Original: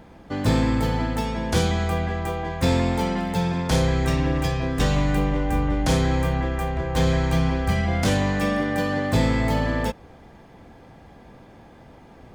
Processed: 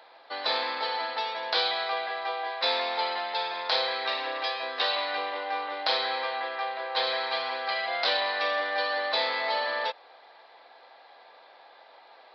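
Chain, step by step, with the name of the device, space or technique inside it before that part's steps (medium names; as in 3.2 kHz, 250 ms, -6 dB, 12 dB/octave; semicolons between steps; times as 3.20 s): musical greeting card (resampled via 11.025 kHz; high-pass 600 Hz 24 dB/octave; peaking EQ 4 kHz +12 dB 0.27 oct)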